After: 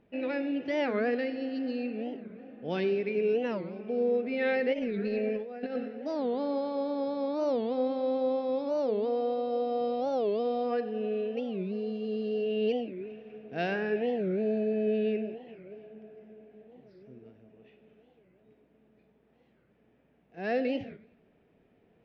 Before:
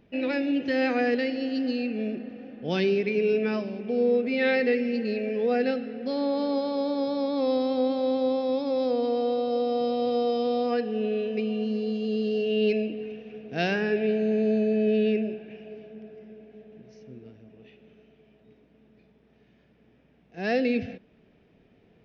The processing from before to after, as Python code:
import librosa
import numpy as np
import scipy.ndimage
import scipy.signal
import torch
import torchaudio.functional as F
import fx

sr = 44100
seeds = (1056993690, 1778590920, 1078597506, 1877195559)

y = fx.lowpass(x, sr, hz=1200.0, slope=6)
y = fx.low_shelf(y, sr, hz=360.0, db=-8.5)
y = fx.over_compress(y, sr, threshold_db=-33.0, ratio=-0.5, at=(4.73, 5.87), fade=0.02)
y = fx.echo_feedback(y, sr, ms=94, feedback_pct=46, wet_db=-18)
y = fx.record_warp(y, sr, rpm=45.0, depth_cents=250.0)